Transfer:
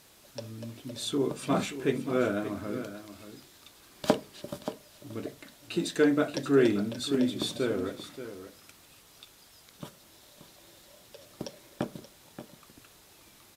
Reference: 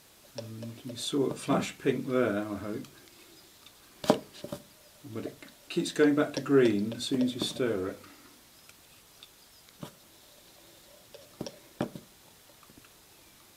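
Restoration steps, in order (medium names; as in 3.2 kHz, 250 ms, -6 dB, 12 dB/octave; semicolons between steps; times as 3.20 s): clip repair -9.5 dBFS; inverse comb 579 ms -12 dB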